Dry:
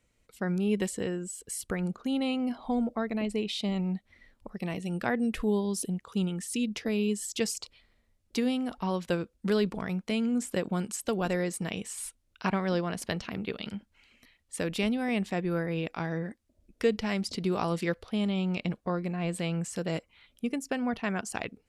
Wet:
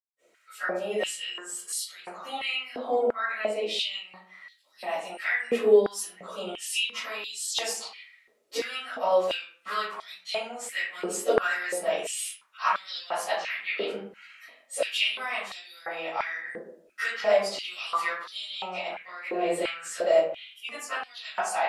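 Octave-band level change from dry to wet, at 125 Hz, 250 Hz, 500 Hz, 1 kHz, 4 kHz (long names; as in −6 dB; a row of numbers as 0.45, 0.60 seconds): below −20 dB, −13.0 dB, +5.5 dB, +7.0 dB, +8.0 dB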